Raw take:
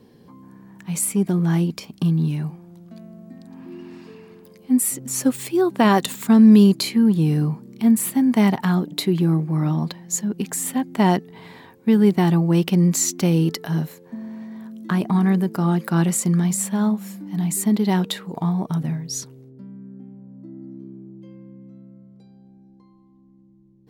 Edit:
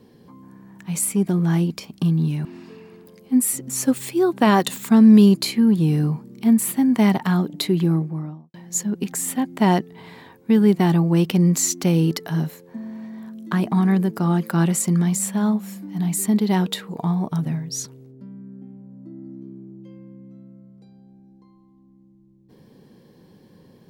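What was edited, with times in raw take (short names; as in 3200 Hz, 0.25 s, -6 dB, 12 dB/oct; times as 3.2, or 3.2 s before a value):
2.45–3.83 cut
9.17–9.92 studio fade out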